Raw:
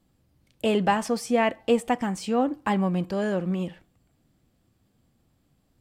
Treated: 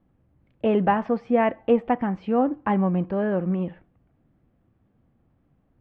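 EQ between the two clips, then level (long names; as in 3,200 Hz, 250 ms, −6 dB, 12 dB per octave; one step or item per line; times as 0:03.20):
Bessel low-pass filter 1,600 Hz, order 4
+2.5 dB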